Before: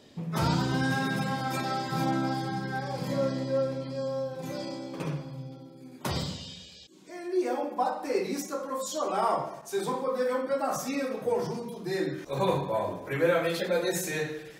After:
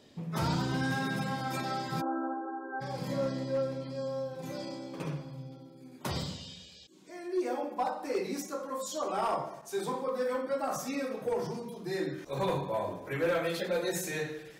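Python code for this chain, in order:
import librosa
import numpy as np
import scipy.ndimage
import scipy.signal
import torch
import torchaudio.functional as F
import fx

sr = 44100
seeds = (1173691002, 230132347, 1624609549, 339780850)

y = np.clip(10.0 ** (20.5 / 20.0) * x, -1.0, 1.0) / 10.0 ** (20.5 / 20.0)
y = fx.brickwall_bandpass(y, sr, low_hz=250.0, high_hz=1600.0, at=(2.0, 2.8), fade=0.02)
y = F.gain(torch.from_numpy(y), -3.5).numpy()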